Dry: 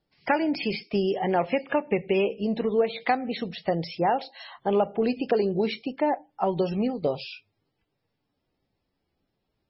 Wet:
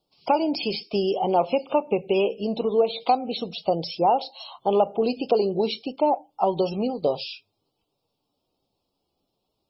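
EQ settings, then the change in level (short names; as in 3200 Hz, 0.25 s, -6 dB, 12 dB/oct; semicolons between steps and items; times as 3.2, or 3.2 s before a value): Butterworth band-stop 1800 Hz, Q 0.97; low shelf 320 Hz -11.5 dB; +6.5 dB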